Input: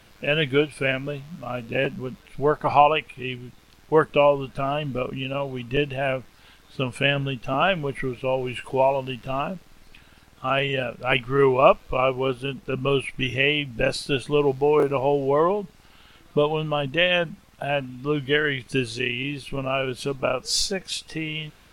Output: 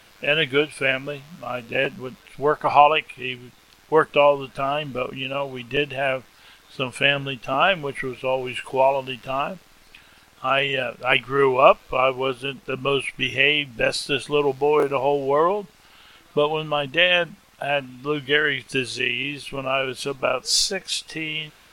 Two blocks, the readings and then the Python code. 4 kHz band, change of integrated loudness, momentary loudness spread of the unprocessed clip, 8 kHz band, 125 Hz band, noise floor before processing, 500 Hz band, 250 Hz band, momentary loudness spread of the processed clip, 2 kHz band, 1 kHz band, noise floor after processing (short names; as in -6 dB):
+4.0 dB, +2.0 dB, 11 LU, n/a, -5.0 dB, -53 dBFS, +0.5 dB, -2.5 dB, 12 LU, +3.5 dB, +2.5 dB, -53 dBFS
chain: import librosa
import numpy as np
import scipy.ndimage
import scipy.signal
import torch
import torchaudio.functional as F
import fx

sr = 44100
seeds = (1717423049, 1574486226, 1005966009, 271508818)

y = fx.low_shelf(x, sr, hz=340.0, db=-10.5)
y = y * librosa.db_to_amplitude(4.0)